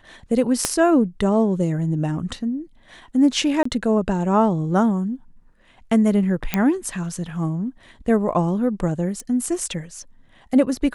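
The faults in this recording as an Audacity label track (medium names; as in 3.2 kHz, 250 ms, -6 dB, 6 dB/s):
0.650000	0.650000	pop -4 dBFS
3.630000	3.650000	dropout 24 ms
6.540000	6.540000	pop -5 dBFS
9.200000	9.200000	pop -20 dBFS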